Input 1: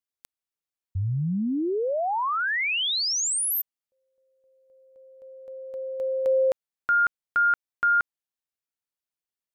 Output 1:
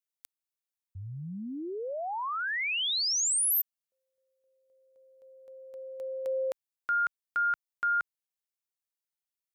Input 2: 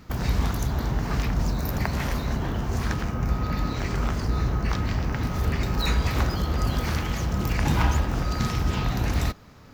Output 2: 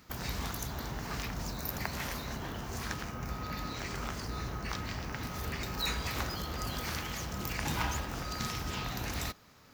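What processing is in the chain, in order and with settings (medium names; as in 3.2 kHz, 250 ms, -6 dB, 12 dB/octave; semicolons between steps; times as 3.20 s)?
tilt EQ +2 dB/octave; trim -7.5 dB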